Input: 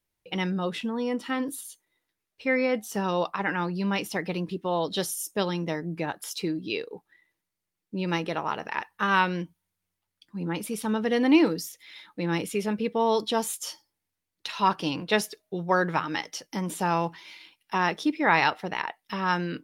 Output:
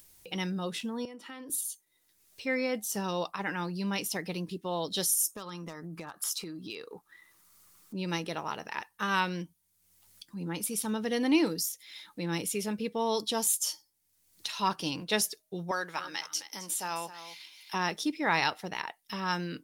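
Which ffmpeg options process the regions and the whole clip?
-filter_complex "[0:a]asettb=1/sr,asplit=3[s0][s1][s2];[s0]atrim=end=1.054[s3];[s1]atrim=start=1.05:end=1.5,asetpts=PTS-STARTPTS,afade=t=in:d=0.004:c=qsin,afade=t=out:st=0.446:d=0.004:c=qsin,acrossover=split=290 2800:gain=0.224 1 0.2[s4][s5][s6];[s4][s5][s6]amix=inputs=3:normalize=0,acrossover=split=170|3000[s7][s8][s9];[s8]acompressor=threshold=0.0112:ratio=6:attack=3.2:release=140:knee=2.83:detection=peak[s10];[s7][s10][s9]amix=inputs=3:normalize=0[s11];[s2]atrim=start=1.496[s12];[s3][s11]acrossfade=d=0.004:c1=hsin:c2=qsin[s13];[s13][s12]acrossfade=d=0.004:c1=qsin:c2=hsin,asettb=1/sr,asplit=3[s14][s15][s16];[s14]atrim=end=5.314[s17];[s15]atrim=start=5.31:end=7.95,asetpts=PTS-STARTPTS,afade=t=in:d=0.004:c=qsin,afade=t=out:st=2.636:d=0.004:c=qsin,equalizer=f=1200:w=2.5:g=14.5,acompressor=threshold=0.0251:ratio=5:attack=3.2:release=140:knee=1:detection=peak,asoftclip=type=hard:threshold=0.0531[s18];[s16]atrim=start=7.946[s19];[s17][s18]acrossfade=d=0.004:c1=hsin:c2=qsin[s20];[s20][s19]acrossfade=d=0.004:c1=qsin:c2=hsin,asettb=1/sr,asplit=3[s21][s22][s23];[s21]atrim=end=15.714[s24];[s22]atrim=start=15.71:end=17.74,asetpts=PTS-STARTPTS,afade=t=in:d=0.004:c=qsin,afade=t=out:st=2.026:d=0.004:c=qsin,highpass=f=930:p=1,aecho=1:1:264:0.224,atrim=end_sample=89523[s25];[s23]atrim=start=17.736[s26];[s24][s25]acrossfade=d=0.004:c1=hsin:c2=qsin[s27];[s27][s26]acrossfade=d=0.004:c1=qsin:c2=hsin,bass=f=250:g=2,treble=f=4000:g=13,acompressor=mode=upward:threshold=0.02:ratio=2.5,volume=0.473"

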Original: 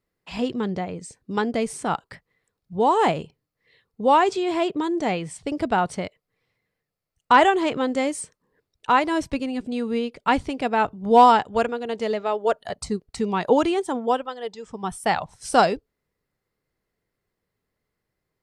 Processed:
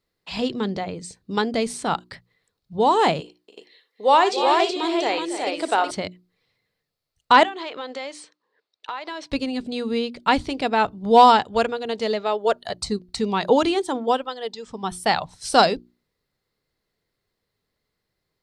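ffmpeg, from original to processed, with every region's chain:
-filter_complex "[0:a]asettb=1/sr,asplit=3[s0][s1][s2];[s0]atrim=end=3.204[s3];[s1]atrim=start=3.2:end=5.91,asetpts=PTS-STARTPTS,afade=t=in:d=0.004:c=qsin,afade=t=out:st=2.706:d=0.004:c=qsin,highpass=f=340:w=0.5412,highpass=f=340:w=1.3066,aecho=1:1:58|74|281|323|372:0.211|0.112|0.266|0.178|0.631,atrim=end_sample=119511[s4];[s2]atrim=start=5.906[s5];[s3][s4]acrossfade=d=0.004:c1=hsin:c2=qsin[s6];[s6][s5]acrossfade=d=0.004:c1=qsin:c2=hsin,asettb=1/sr,asplit=3[s7][s8][s9];[s7]atrim=end=7.434[s10];[s8]atrim=start=7.43:end=9.31,asetpts=PTS-STARTPTS,afade=t=in:d=0.004:c=qsin,afade=t=out:st=1.876:d=0.004:c=qsin,highpass=560,lowpass=4400,acompressor=threshold=0.0355:ratio=6:attack=3.2:release=140:knee=1:detection=peak[s11];[s9]atrim=start=9.306[s12];[s10][s11]acrossfade=d=0.004:c1=hsin:c2=qsin[s13];[s13][s12]acrossfade=d=0.004:c1=qsin:c2=hsin,equalizer=f=4100:t=o:w=0.67:g=9.5,bandreject=f=60:t=h:w=6,bandreject=f=120:t=h:w=6,bandreject=f=180:t=h:w=6,bandreject=f=240:t=h:w=6,bandreject=f=300:t=h:w=6,bandreject=f=360:t=h:w=6,volume=1.12"

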